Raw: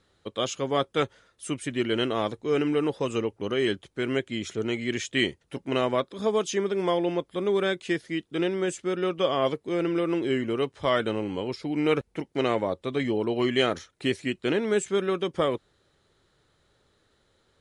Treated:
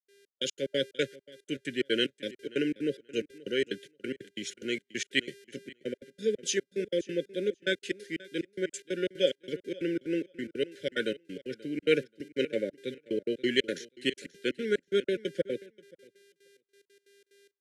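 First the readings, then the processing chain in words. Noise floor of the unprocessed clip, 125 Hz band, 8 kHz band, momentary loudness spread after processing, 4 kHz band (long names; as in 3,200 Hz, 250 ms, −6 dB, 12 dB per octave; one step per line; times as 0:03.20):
−69 dBFS, −11.0 dB, −1.5 dB, 11 LU, −2.0 dB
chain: high-pass filter 140 Hz 24 dB per octave
low-shelf EQ 280 Hz −7.5 dB
tape wow and flutter 20 cents
hum with harmonics 400 Hz, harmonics 32, −51 dBFS −6 dB per octave
gate pattern ".xx..x.x.xx" 182 BPM −60 dB
linear-phase brick-wall band-stop 590–1,400 Hz
repeating echo 532 ms, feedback 15%, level −18 dB
multiband upward and downward expander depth 40%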